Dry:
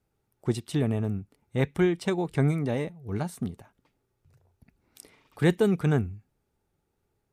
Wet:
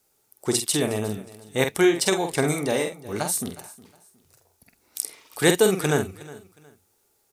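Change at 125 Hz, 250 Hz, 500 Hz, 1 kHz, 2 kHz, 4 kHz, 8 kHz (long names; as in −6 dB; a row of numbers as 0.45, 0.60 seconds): −4.0, +1.5, +6.0, +7.5, +8.5, +14.0, +21.0 decibels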